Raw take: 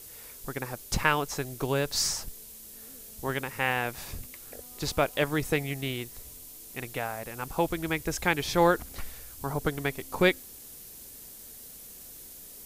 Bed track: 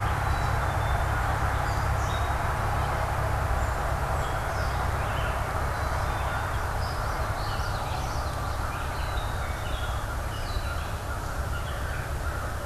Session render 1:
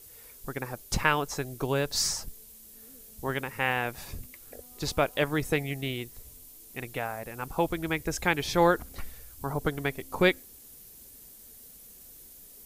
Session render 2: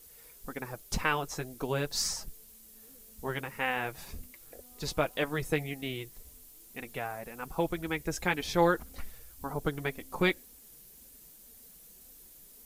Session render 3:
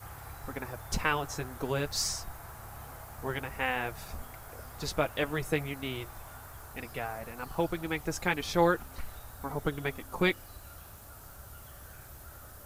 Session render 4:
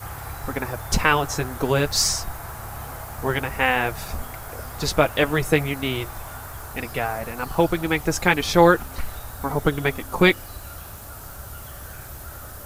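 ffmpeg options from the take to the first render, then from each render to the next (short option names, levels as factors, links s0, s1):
-af "afftdn=nr=6:nf=-47"
-af "flanger=delay=3.8:depth=2.6:regen=-30:speed=1.9:shape=sinusoidal,acrusher=bits=10:mix=0:aa=0.000001"
-filter_complex "[1:a]volume=0.106[s0];[0:a][s0]amix=inputs=2:normalize=0"
-af "volume=3.55,alimiter=limit=0.708:level=0:latency=1"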